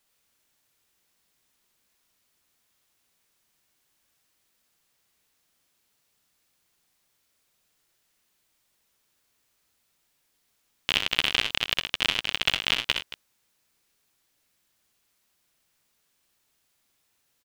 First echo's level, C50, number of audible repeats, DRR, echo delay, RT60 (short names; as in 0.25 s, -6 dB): -6.0 dB, none, 3, none, 64 ms, none